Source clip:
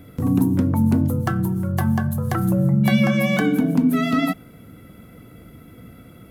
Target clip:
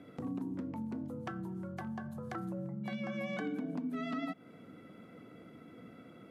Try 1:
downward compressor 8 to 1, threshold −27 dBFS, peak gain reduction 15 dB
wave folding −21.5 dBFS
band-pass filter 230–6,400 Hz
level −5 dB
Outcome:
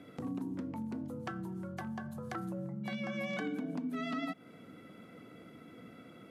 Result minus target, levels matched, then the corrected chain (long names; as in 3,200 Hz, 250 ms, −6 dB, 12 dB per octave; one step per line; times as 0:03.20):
4,000 Hz band +3.5 dB
downward compressor 8 to 1, threshold −27 dBFS, peak gain reduction 15 dB
high-shelf EQ 2,100 Hz −5.5 dB
wave folding −21.5 dBFS
band-pass filter 230–6,400 Hz
level −5 dB